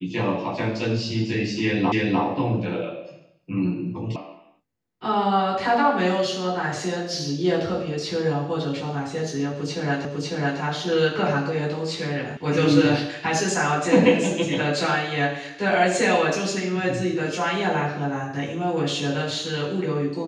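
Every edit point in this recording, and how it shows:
1.92 s: repeat of the last 0.3 s
4.16 s: sound stops dead
10.05 s: repeat of the last 0.55 s
12.37 s: sound stops dead

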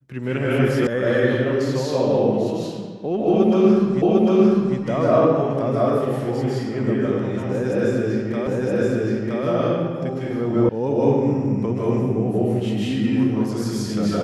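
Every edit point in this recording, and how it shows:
0.87 s: sound stops dead
4.02 s: repeat of the last 0.75 s
8.47 s: repeat of the last 0.97 s
10.69 s: sound stops dead

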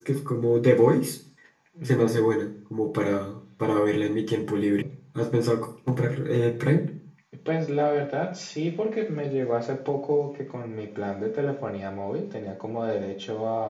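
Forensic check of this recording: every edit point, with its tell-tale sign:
4.82 s: sound stops dead

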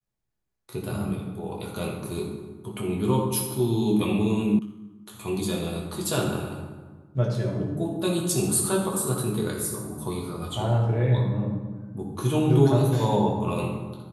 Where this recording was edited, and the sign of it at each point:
4.59 s: sound stops dead

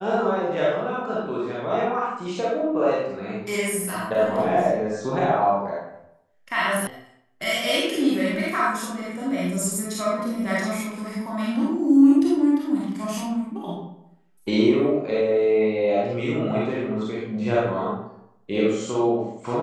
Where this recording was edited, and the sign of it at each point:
6.87 s: sound stops dead

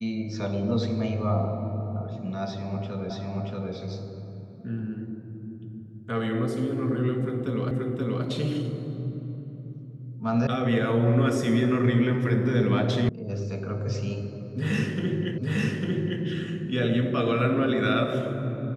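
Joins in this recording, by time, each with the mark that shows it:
3.10 s: repeat of the last 0.63 s
7.71 s: repeat of the last 0.53 s
10.47 s: sound stops dead
13.09 s: sound stops dead
15.38 s: repeat of the last 0.85 s

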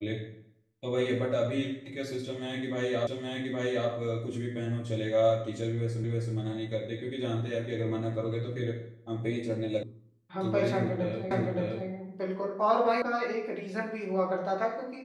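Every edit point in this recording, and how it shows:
3.07 s: repeat of the last 0.82 s
6.04 s: repeat of the last 0.32 s
9.83 s: sound stops dead
11.31 s: repeat of the last 0.57 s
13.02 s: sound stops dead

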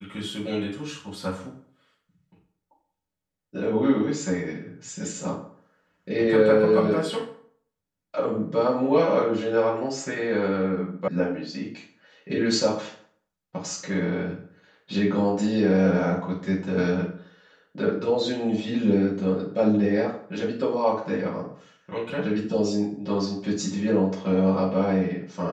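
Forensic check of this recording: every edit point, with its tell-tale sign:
11.08 s: sound stops dead

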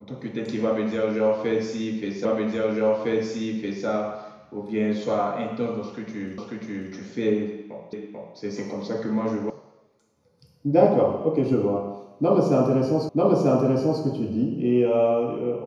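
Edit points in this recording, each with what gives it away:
2.25 s: repeat of the last 1.61 s
6.38 s: repeat of the last 0.54 s
7.93 s: repeat of the last 0.44 s
9.50 s: sound stops dead
13.09 s: repeat of the last 0.94 s

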